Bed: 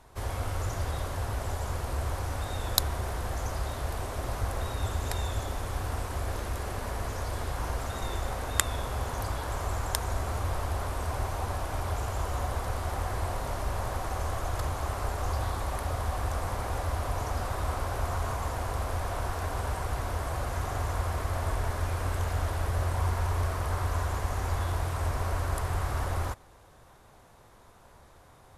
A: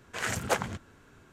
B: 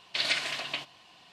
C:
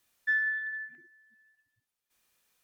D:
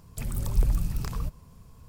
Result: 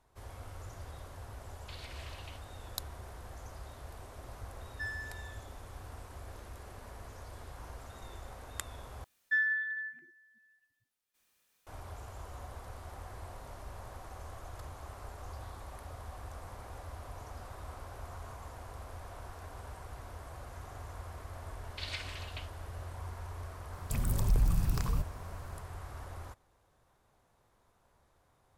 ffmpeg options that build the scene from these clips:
ffmpeg -i bed.wav -i cue0.wav -i cue1.wav -i cue2.wav -i cue3.wav -filter_complex "[2:a]asplit=2[link_01][link_02];[3:a]asplit=2[link_03][link_04];[0:a]volume=-14.5dB[link_05];[link_01]acompressor=threshold=-33dB:ratio=6:attack=3.2:release=140:knee=1:detection=peak[link_06];[link_03]adynamicsmooth=sensitivity=2.5:basefreq=1100[link_07];[4:a]alimiter=limit=-18.5dB:level=0:latency=1:release=33[link_08];[link_05]asplit=2[link_09][link_10];[link_09]atrim=end=9.044[link_11];[link_04]atrim=end=2.63,asetpts=PTS-STARTPTS,volume=-1.5dB[link_12];[link_10]atrim=start=11.666[link_13];[link_06]atrim=end=1.32,asetpts=PTS-STARTPTS,volume=-14dB,afade=type=in:duration=0.004:curve=hsin,afade=type=out:start_time=1.316:duration=0.004:curve=hsin,adelay=1540[link_14];[link_07]atrim=end=2.63,asetpts=PTS-STARTPTS,volume=-11.5dB,afade=type=in:duration=0.004:curve=hsin,afade=type=out:start_time=2.626:duration=0.004:curve=hsin,adelay=4520[link_15];[link_02]atrim=end=1.32,asetpts=PTS-STARTPTS,volume=-13dB,afade=type=in:duration=0.004:curve=hsin,afade=type=out:start_time=1.316:duration=0.004:curve=hsin,adelay=21630[link_16];[link_08]atrim=end=1.88,asetpts=PTS-STARTPTS,volume=-0.5dB,afade=type=in:duration=0.004:curve=hsin,afade=type=out:start_time=1.876:duration=0.004:curve=hsin,adelay=23730[link_17];[link_11][link_12]acrossfade=duration=0.004:curve1=hsin:curve2=hsin[link_18];[link_18][link_13]acrossfade=duration=0.004:curve1=hsin:curve2=hsin[link_19];[link_19][link_14][link_15][link_16][link_17]amix=inputs=5:normalize=0" out.wav

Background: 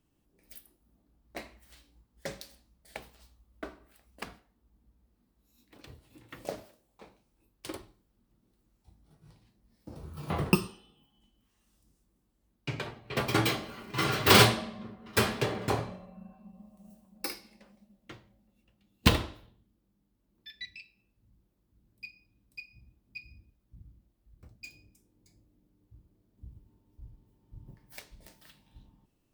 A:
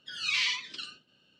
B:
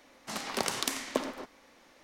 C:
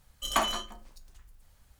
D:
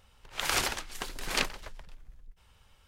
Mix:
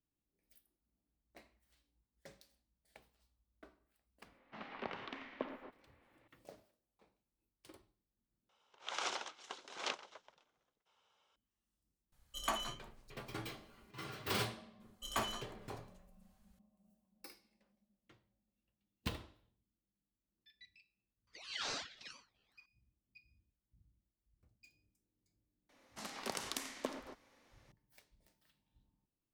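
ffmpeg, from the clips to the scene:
ffmpeg -i bed.wav -i cue0.wav -i cue1.wav -i cue2.wav -i cue3.wav -filter_complex "[2:a]asplit=2[link_01][link_02];[3:a]asplit=2[link_03][link_04];[0:a]volume=-18.5dB[link_05];[link_01]lowpass=frequency=2900:width=0.5412,lowpass=frequency=2900:width=1.3066[link_06];[4:a]highpass=440,equalizer=frequency=1800:width_type=q:width=4:gain=-8,equalizer=frequency=2500:width_type=q:width=4:gain=-5,equalizer=frequency=4600:width_type=q:width=4:gain=-7,lowpass=frequency=6100:width=0.5412,lowpass=frequency=6100:width=1.3066[link_07];[1:a]aeval=exprs='val(0)*sin(2*PI*1000*n/s+1000*0.8/2.2*sin(2*PI*2.2*n/s))':channel_layout=same[link_08];[link_05]asplit=2[link_09][link_10];[link_09]atrim=end=8.494[link_11];[link_07]atrim=end=2.87,asetpts=PTS-STARTPTS,volume=-7dB[link_12];[link_10]atrim=start=11.356[link_13];[link_06]atrim=end=2.03,asetpts=PTS-STARTPTS,volume=-11dB,afade=type=in:duration=0.004:curve=hsin,afade=type=out:start_time=2.026:duration=0.004:curve=hsin,adelay=187425S[link_14];[link_03]atrim=end=1.79,asetpts=PTS-STARTPTS,volume=-10.5dB,afade=type=in:duration=0.004:curve=hsin,afade=type=out:start_time=1.786:duration=0.004:curve=hsin,adelay=12120[link_15];[link_04]atrim=end=1.79,asetpts=PTS-STARTPTS,volume=-11.5dB,afade=type=in:duration=0.004:curve=hsin,afade=type=out:start_time=1.786:duration=0.004:curve=hsin,adelay=14800[link_16];[link_08]atrim=end=1.39,asetpts=PTS-STARTPTS,volume=-10dB,afade=type=in:duration=0.004:curve=hsin,afade=type=out:start_time=1.386:duration=0.004:curve=hsin,adelay=21270[link_17];[link_02]atrim=end=2.03,asetpts=PTS-STARTPTS,volume=-10dB,afade=type=in:duration=0.004:curve=hsin,afade=type=out:start_time=2.026:duration=0.004:curve=hsin,adelay=25690[link_18];[link_11][link_12]acrossfade=duration=0.004:curve1=hsin:curve2=hsin[link_19];[link_19][link_13]acrossfade=duration=0.004:curve1=hsin:curve2=hsin[link_20];[link_20][link_14][link_15][link_16][link_17][link_18]amix=inputs=6:normalize=0" out.wav

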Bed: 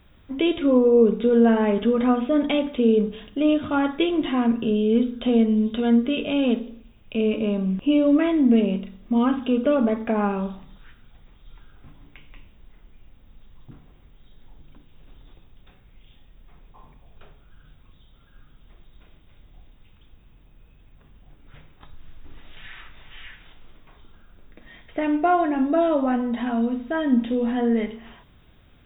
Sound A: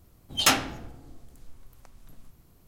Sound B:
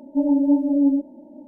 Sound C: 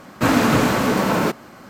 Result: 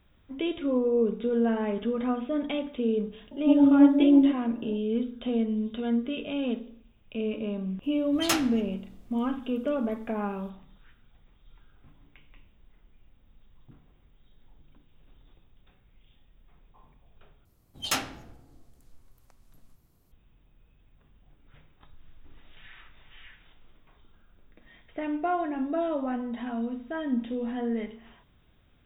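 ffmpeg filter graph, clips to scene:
ffmpeg -i bed.wav -i cue0.wav -i cue1.wav -filter_complex "[1:a]asplit=2[link_01][link_02];[0:a]volume=-8.5dB,asplit=2[link_03][link_04];[link_03]atrim=end=17.454[link_05];[link_02]atrim=end=2.67,asetpts=PTS-STARTPTS,volume=-7.5dB[link_06];[link_04]atrim=start=20.116[link_07];[2:a]atrim=end=1.47,asetpts=PTS-STARTPTS,volume=-0.5dB,afade=type=in:duration=0.004:curve=hsin,afade=type=out:start_time=1.466:duration=0.004:curve=hsin,adelay=3310[link_08];[link_01]atrim=end=2.67,asetpts=PTS-STARTPTS,volume=-6.5dB,afade=type=in:duration=0.004:curve=hsin,afade=type=out:start_time=2.666:duration=0.004:curve=hsin,adelay=7830[link_09];[link_05][link_06]acrossfade=duration=0.004:curve1=hsin:curve2=hsin[link_10];[link_10][link_07]acrossfade=duration=0.004:curve1=hsin:curve2=hsin[link_11];[link_11][link_08][link_09]amix=inputs=3:normalize=0" out.wav

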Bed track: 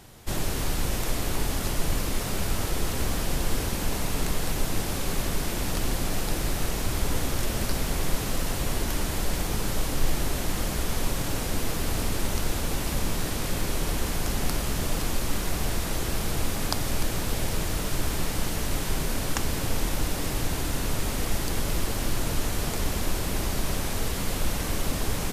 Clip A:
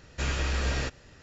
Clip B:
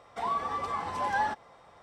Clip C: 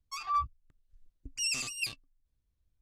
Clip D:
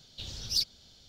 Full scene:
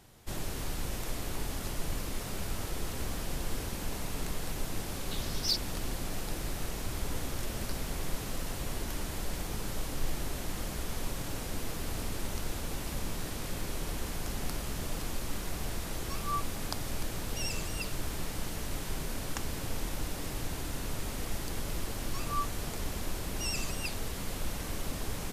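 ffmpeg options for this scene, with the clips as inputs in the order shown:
ffmpeg -i bed.wav -i cue0.wav -i cue1.wav -i cue2.wav -i cue3.wav -filter_complex "[3:a]asplit=2[link_01][link_02];[0:a]volume=-8.5dB[link_03];[link_01]aecho=1:1:1.8:0.65[link_04];[4:a]atrim=end=1.08,asetpts=PTS-STARTPTS,volume=-2dB,afade=type=in:duration=0.004:curve=hsin,afade=type=out:start_time=1.076:duration=0.004:curve=hsin,adelay=217413S[link_05];[link_04]atrim=end=2.81,asetpts=PTS-STARTPTS,volume=-9dB,afade=type=in:duration=0.004:curve=hsin,afade=type=out:start_time=2.806:duration=0.004:curve=hsin,adelay=15980[link_06];[link_02]atrim=end=2.81,asetpts=PTS-STARTPTS,volume=-5dB,afade=type=in:duration=0.004:curve=hsin,afade=type=out:start_time=2.806:duration=0.004:curve=hsin,adelay=22020[link_07];[link_03][link_05][link_06][link_07]amix=inputs=4:normalize=0" out.wav

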